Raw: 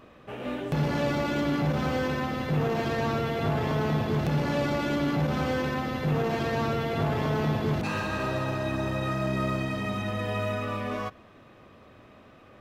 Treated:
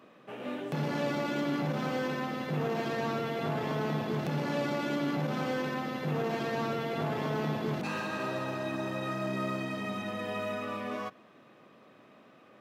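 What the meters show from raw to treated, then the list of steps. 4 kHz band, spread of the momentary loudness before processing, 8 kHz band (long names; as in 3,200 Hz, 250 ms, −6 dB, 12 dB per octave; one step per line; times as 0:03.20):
−4.0 dB, 4 LU, −4.0 dB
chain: high-pass filter 150 Hz 24 dB per octave
level −4 dB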